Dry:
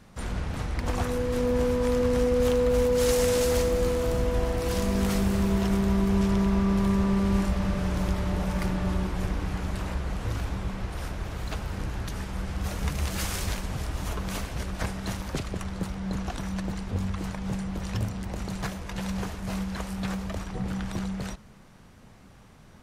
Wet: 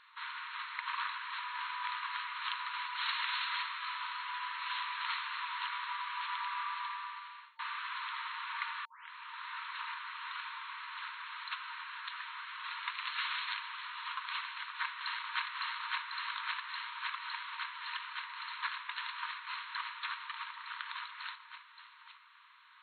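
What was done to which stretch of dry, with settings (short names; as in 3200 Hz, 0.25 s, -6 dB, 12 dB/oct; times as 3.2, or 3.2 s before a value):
6.63–7.59 fade out
8.85 tape start 0.80 s
14.44–15.45 echo throw 0.56 s, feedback 85%, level -1 dB
whole clip: FFT band-pass 910–4300 Hz; gain +1 dB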